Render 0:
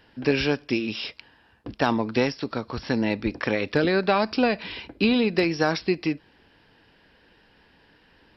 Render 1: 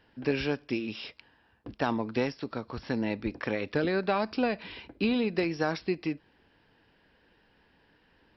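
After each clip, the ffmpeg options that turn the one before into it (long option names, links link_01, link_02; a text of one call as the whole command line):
ffmpeg -i in.wav -af "highshelf=frequency=4000:gain=-6.5,volume=-6dB" out.wav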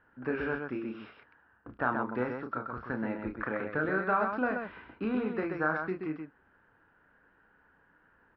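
ffmpeg -i in.wav -af "lowpass=frequency=1400:width_type=q:width=4.9,aecho=1:1:32.07|128.3:0.501|0.562,volume=-6.5dB" out.wav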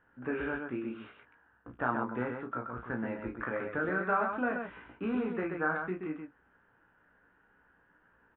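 ffmpeg -i in.wav -filter_complex "[0:a]aresample=8000,aresample=44100,asplit=2[link_01][link_02];[link_02]adelay=17,volume=-5.5dB[link_03];[link_01][link_03]amix=inputs=2:normalize=0,volume=-2.5dB" out.wav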